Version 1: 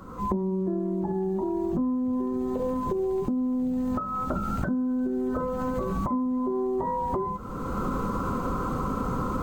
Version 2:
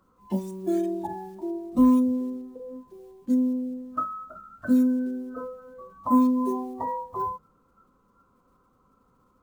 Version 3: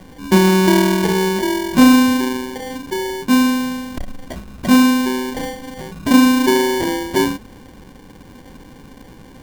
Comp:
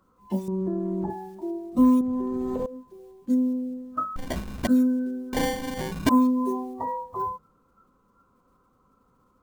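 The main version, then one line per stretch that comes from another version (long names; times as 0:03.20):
2
0:00.48–0:01.10: punch in from 1
0:02.01–0:02.66: punch in from 1
0:04.16–0:04.67: punch in from 3
0:05.33–0:06.09: punch in from 3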